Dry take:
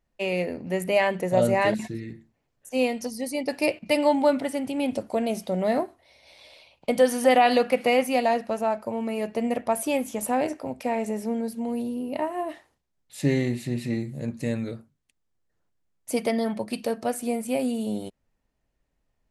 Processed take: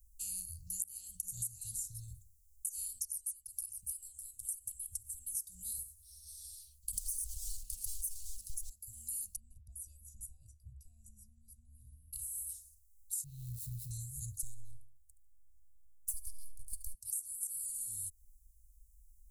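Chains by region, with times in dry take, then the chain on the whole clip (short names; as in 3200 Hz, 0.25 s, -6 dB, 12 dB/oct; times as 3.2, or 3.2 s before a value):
3.05–5.37 bell 4600 Hz -10 dB 0.63 oct + compressor 5:1, threshold -33 dBFS + echo 0.603 s -17 dB
6.93–8.7 G.711 law mismatch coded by mu + overdrive pedal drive 27 dB, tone 1500 Hz, clips at -7 dBFS
9.36–12.13 compressor 1.5:1, threshold -31 dBFS + running mean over 41 samples
13.24–13.91 switching spikes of -28.5 dBFS + air absorption 390 m
14.42–16.94 half-wave gain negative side -12 dB + feedback echo 73 ms, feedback 30%, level -14.5 dB + mismatched tape noise reduction decoder only
whole clip: inverse Chebyshev band-stop 250–2100 Hz, stop band 70 dB; high shelf 6400 Hz +6.5 dB; compressor 10:1, threshold -52 dBFS; gain +15.5 dB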